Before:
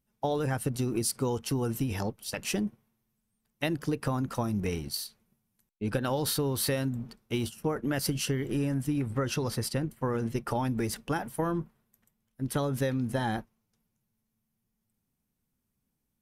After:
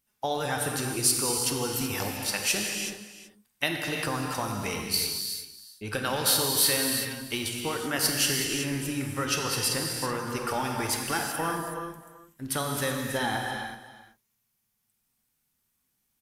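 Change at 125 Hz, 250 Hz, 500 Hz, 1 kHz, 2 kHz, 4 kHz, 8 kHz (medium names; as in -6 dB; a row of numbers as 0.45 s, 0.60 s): -4.5 dB, -2.5 dB, -0.5 dB, +4.5 dB, +8.5 dB, +10.0 dB, +10.0 dB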